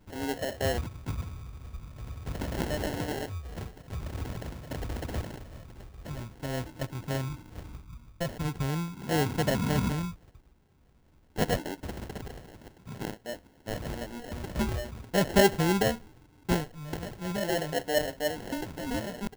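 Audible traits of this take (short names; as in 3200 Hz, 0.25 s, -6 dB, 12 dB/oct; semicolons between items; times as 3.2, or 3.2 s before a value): phasing stages 4, 0.46 Hz, lowest notch 370–4900 Hz; aliases and images of a low sample rate 1200 Hz, jitter 0%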